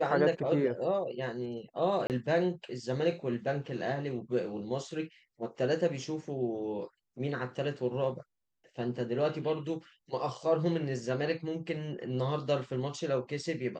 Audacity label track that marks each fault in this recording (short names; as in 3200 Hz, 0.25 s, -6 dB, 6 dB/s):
2.070000	2.100000	gap 28 ms